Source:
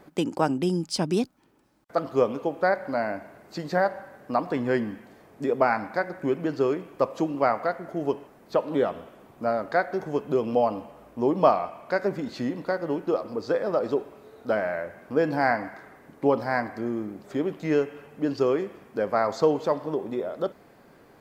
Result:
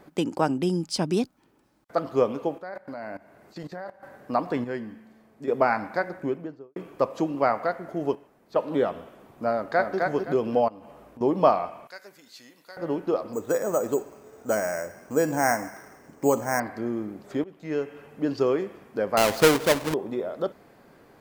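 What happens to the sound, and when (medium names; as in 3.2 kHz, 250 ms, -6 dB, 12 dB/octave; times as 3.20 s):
2.58–4.03 s: level held to a coarse grid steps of 18 dB
4.64–5.48 s: feedback comb 220 Hz, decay 1.5 s
6.06–6.76 s: studio fade out
8.15–8.56 s: gain -7.5 dB
9.52–9.97 s: echo throw 260 ms, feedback 25%, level -3 dB
10.68–11.21 s: compression 8:1, threshold -41 dBFS
11.87–12.77 s: pre-emphasis filter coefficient 0.97
13.33–16.60 s: careless resampling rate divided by 6×, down filtered, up hold
17.44–18.08 s: fade in, from -19.5 dB
19.17–19.94 s: square wave that keeps the level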